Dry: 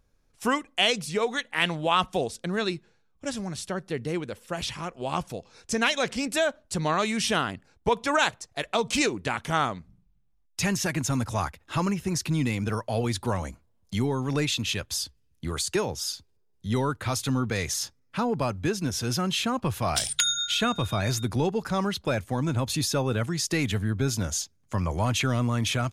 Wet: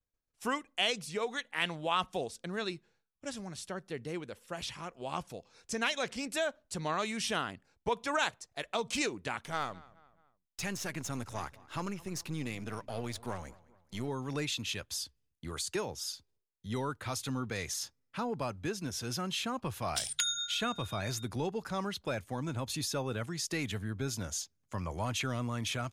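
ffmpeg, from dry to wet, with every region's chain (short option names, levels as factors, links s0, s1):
-filter_complex "[0:a]asettb=1/sr,asplit=3[s0][s1][s2];[s0]atrim=end=9.454[s3];[s1]atrim=start=9.45:end=14.08,asetpts=PTS-STARTPTS,afade=t=in:d=0.004:c=qsin,afade=t=out:st=4.626:d=0.004:c=qsin,aeval=exprs='if(lt(val(0),0),0.447*val(0),val(0))':c=same,asplit=2[s4][s5];[s5]adelay=214,lowpass=f=3200:p=1,volume=0.0891,asplit=2[s6][s7];[s7]adelay=214,lowpass=f=3200:p=1,volume=0.47,asplit=2[s8][s9];[s9]adelay=214,lowpass=f=3200:p=1,volume=0.47[s10];[s4][s6][s8][s10]amix=inputs=4:normalize=0,atrim=end_sample=204183[s11];[s2]atrim=start=14.076[s12];[s3][s11]acrossfade=d=0.004:c1=hsin:c2=qsin[s13];[s13][s12]acrossfade=d=0.004:c1=qsin:c2=hsin,agate=range=0.0224:threshold=0.00141:ratio=3:detection=peak,lowshelf=f=270:g=-4,volume=0.422"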